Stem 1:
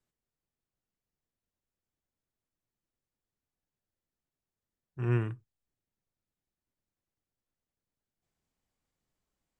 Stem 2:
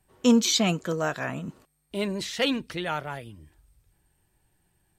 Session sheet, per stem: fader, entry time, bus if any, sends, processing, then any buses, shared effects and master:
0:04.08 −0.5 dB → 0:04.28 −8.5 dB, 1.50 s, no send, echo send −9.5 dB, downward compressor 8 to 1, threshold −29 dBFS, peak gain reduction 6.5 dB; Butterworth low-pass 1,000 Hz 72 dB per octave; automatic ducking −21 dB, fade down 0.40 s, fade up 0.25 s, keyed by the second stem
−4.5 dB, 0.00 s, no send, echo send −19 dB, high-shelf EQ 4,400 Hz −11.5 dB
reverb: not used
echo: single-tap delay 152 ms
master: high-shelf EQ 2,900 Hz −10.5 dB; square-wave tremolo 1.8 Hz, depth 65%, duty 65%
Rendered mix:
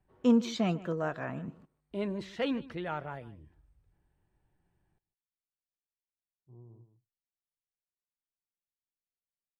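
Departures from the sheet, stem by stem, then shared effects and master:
stem 1 −0.5 dB → −12.5 dB
master: missing square-wave tremolo 1.8 Hz, depth 65%, duty 65%

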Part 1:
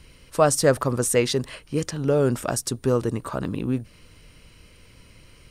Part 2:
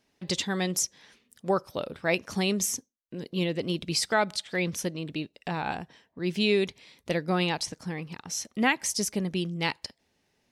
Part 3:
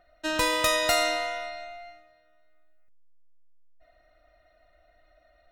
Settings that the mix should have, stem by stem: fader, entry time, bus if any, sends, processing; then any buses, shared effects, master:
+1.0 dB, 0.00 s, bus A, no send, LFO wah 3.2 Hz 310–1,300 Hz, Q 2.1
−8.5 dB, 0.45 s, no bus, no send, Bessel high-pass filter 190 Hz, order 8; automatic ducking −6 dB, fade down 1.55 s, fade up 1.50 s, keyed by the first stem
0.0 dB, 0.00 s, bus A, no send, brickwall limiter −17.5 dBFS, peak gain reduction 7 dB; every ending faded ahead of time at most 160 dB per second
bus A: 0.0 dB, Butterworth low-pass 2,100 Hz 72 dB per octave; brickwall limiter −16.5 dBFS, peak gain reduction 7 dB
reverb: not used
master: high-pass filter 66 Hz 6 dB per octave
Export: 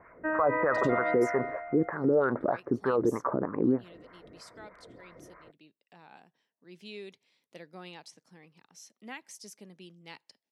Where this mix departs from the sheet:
stem 1 +1.0 dB → +11.0 dB
stem 2 −8.5 dB → −18.5 dB

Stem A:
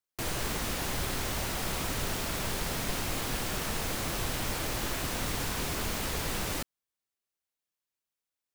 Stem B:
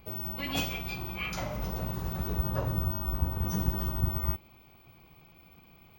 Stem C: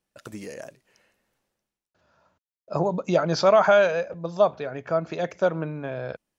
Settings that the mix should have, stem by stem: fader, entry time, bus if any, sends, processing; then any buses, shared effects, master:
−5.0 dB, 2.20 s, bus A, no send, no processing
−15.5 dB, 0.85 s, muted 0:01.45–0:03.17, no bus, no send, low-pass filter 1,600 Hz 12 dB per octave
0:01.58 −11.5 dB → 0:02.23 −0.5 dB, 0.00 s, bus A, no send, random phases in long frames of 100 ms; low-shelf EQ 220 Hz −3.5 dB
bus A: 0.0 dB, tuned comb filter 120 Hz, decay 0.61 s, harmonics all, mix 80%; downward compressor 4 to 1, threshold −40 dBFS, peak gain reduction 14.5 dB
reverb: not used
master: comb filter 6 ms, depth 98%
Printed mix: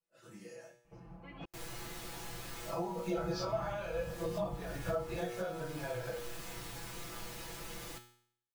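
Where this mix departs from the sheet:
stem A: entry 2.20 s → 1.35 s
stem C −11.5 dB → −5.0 dB

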